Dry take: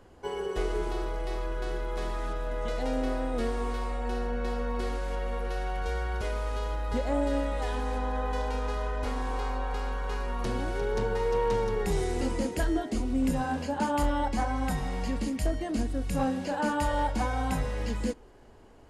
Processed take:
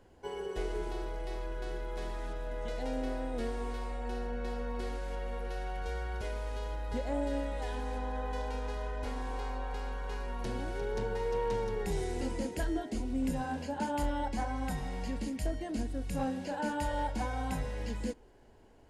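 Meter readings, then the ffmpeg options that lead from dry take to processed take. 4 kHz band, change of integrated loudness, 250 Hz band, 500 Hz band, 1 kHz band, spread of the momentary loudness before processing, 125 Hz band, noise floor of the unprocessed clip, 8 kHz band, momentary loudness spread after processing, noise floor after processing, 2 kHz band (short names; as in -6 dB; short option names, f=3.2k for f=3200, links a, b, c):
-5.5 dB, -5.5 dB, -5.5 dB, -5.5 dB, -6.0 dB, 6 LU, -5.5 dB, -51 dBFS, -5.5 dB, 6 LU, -56 dBFS, -6.0 dB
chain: -af "bandreject=f=1.2k:w=6.2,volume=-5.5dB"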